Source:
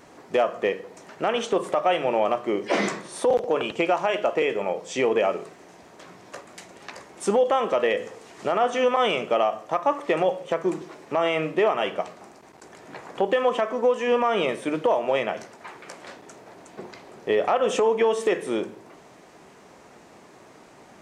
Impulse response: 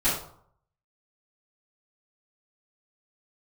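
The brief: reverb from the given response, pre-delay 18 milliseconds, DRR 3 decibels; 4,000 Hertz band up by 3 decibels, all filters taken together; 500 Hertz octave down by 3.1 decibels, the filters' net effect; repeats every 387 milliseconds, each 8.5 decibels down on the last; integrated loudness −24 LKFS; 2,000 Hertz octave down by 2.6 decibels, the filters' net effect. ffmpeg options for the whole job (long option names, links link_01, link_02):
-filter_complex "[0:a]equalizer=frequency=500:width_type=o:gain=-3.5,equalizer=frequency=2000:width_type=o:gain=-5.5,equalizer=frequency=4000:width_type=o:gain=7.5,aecho=1:1:387|774|1161|1548:0.376|0.143|0.0543|0.0206,asplit=2[link_01][link_02];[1:a]atrim=start_sample=2205,adelay=18[link_03];[link_02][link_03]afir=irnorm=-1:irlink=0,volume=-15.5dB[link_04];[link_01][link_04]amix=inputs=2:normalize=0"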